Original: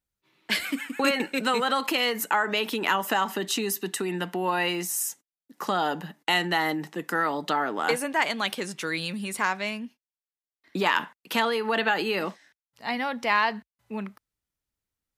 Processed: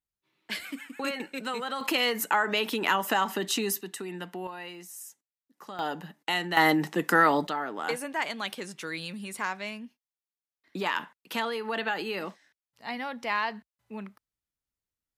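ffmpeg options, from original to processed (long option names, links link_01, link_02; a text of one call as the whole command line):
ffmpeg -i in.wav -af "asetnsamples=nb_out_samples=441:pad=0,asendcmd='1.81 volume volume -1dB;3.81 volume volume -8dB;4.47 volume volume -15dB;5.79 volume volume -5dB;6.57 volume volume 5dB;7.47 volume volume -6dB',volume=-8.5dB" out.wav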